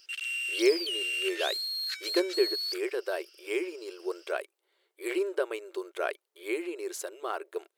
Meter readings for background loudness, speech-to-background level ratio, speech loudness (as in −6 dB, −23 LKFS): −31.5 LKFS, −1.5 dB, −33.0 LKFS